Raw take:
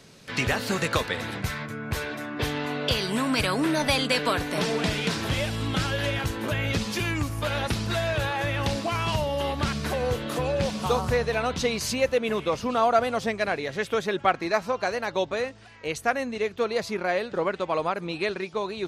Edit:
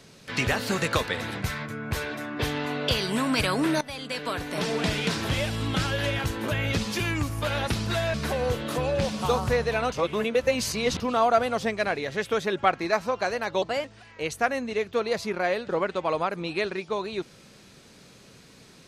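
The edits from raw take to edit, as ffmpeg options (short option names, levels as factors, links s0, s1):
-filter_complex "[0:a]asplit=7[s0][s1][s2][s3][s4][s5][s6];[s0]atrim=end=3.81,asetpts=PTS-STARTPTS,afade=t=out:st=3.806:d=0.004:c=hsin:silence=0.112202[s7];[s1]atrim=start=3.81:end=8.142,asetpts=PTS-STARTPTS,afade=t=in:d=1.08:silence=0.112202[s8];[s2]atrim=start=9.748:end=11.532[s9];[s3]atrim=start=11.528:end=12.612,asetpts=PTS-STARTPTS,areverse[s10];[s4]atrim=start=12.608:end=15.234[s11];[s5]atrim=start=15.23:end=15.49,asetpts=PTS-STARTPTS,asetrate=51156,aresample=44100,atrim=end_sample=9884,asetpts=PTS-STARTPTS[s12];[s6]atrim=start=15.486[s13];[s7][s8]concat=n=2:v=0:a=1[s14];[s14][s9]acrossfade=d=0.004:c1=hsin:c2=hsin[s15];[s15][s10]acrossfade=d=0.004:c1=hsin:c2=hsin[s16];[s16][s11]acrossfade=d=0.004:c1=hsin:c2=hsin[s17];[s17][s12]acrossfade=d=0.004:c1=hsin:c2=hsin[s18];[s18][s13]acrossfade=d=0.004:c1=hsin:c2=hsin"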